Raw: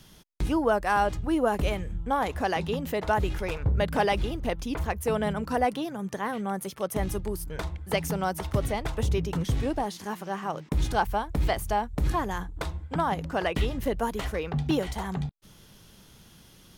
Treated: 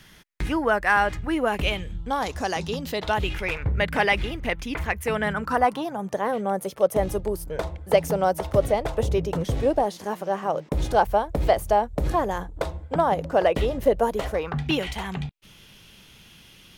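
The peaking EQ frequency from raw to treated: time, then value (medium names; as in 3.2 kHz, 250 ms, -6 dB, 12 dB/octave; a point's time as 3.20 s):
peaking EQ +12 dB 1 oct
1.32 s 1.9 kHz
2.51 s 7 kHz
3.52 s 2.1 kHz
5.10 s 2.1 kHz
6.24 s 560 Hz
14.30 s 560 Hz
14.70 s 2.6 kHz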